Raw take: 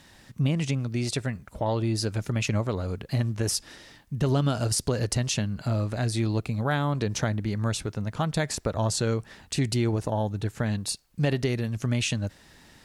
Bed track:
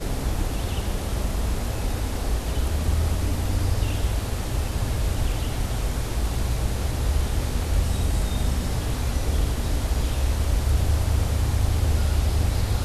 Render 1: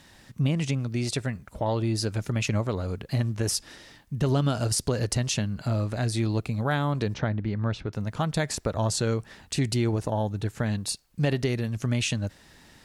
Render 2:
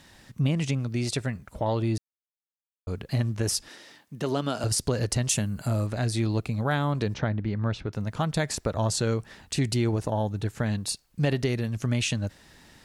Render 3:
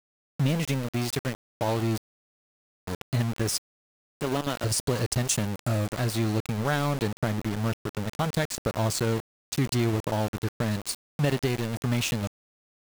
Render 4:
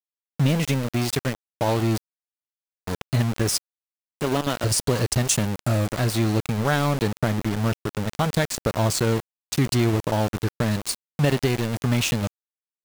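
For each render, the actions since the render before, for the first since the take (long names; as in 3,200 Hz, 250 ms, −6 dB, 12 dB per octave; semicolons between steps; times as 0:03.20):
0:07.14–0:07.93: high-frequency loss of the air 240 metres
0:01.98–0:02.87: silence; 0:03.68–0:04.64: high-pass filter 240 Hz; 0:05.29–0:05.87: high shelf with overshoot 6,600 Hz +10 dB, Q 1.5
centre clipping without the shift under −28.5 dBFS
level +4.5 dB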